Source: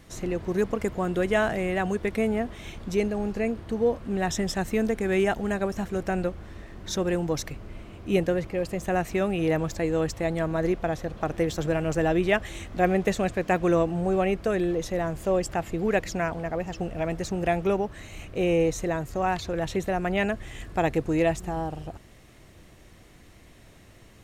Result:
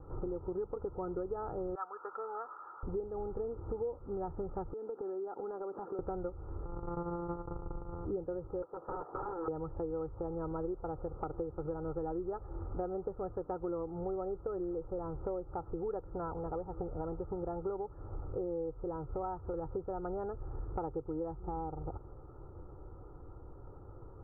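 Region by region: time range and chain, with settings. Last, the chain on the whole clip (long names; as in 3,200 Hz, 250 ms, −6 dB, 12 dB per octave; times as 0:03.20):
0:01.75–0:02.83: high-pass with resonance 1,300 Hz, resonance Q 3.2 + high-frequency loss of the air 220 metres
0:04.73–0:05.99: high-pass filter 240 Hz 24 dB per octave + downward compressor 12 to 1, threshold −36 dBFS
0:06.65–0:08.05: samples sorted by size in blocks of 256 samples + noise gate −40 dBFS, range −10 dB + upward compression, threshold −29 dBFS
0:08.62–0:09.48: high-pass filter 500 Hz + dynamic equaliser 750 Hz, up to +3 dB, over −36 dBFS, Q 1.8 + wrap-around overflow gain 27.5 dB
whole clip: Butterworth low-pass 1,400 Hz 96 dB per octave; comb filter 2.3 ms, depth 73%; downward compressor 6 to 1, threshold −36 dBFS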